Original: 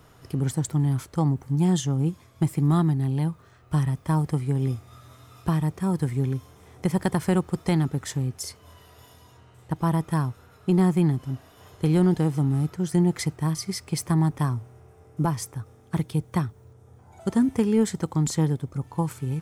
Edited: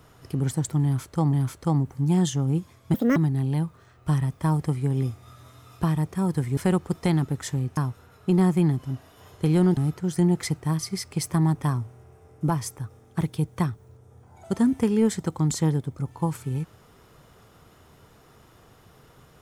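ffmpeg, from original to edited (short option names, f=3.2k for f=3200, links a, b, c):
-filter_complex "[0:a]asplit=7[a][b][c][d][e][f][g];[a]atrim=end=1.332[h];[b]atrim=start=0.838:end=2.454[i];[c]atrim=start=2.45:end=2.81,asetpts=PTS-STARTPTS,asetrate=71883,aresample=44100[j];[d]atrim=start=2.806:end=6.222[k];[e]atrim=start=7.198:end=8.402[l];[f]atrim=start=10.168:end=12.172[m];[g]atrim=start=12.528[n];[h][i]acrossfade=d=0.004:c1=hsin:c2=hsin[o];[o][j]acrossfade=d=0.004:c1=hsin:c2=hsin[p];[p][k]acrossfade=d=0.004:c1=hsin:c2=hsin[q];[q][l]acrossfade=d=0.004:c1=hsin:c2=hsin[r];[r][m]acrossfade=d=0.004:c1=hsin:c2=hsin[s];[s][n]acrossfade=d=0.004:c1=hsin:c2=hsin"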